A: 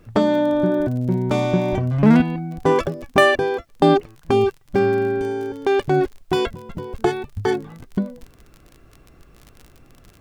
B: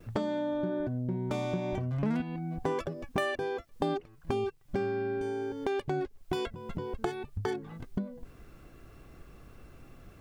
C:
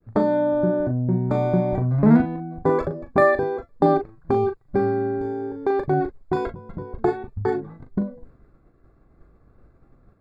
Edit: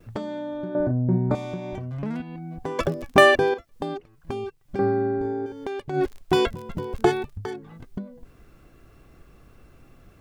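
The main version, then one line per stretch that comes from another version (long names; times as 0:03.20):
B
0:00.75–0:01.35: punch in from C
0:02.79–0:03.54: punch in from A
0:04.79–0:05.46: punch in from C
0:06.00–0:07.30: punch in from A, crossfade 0.16 s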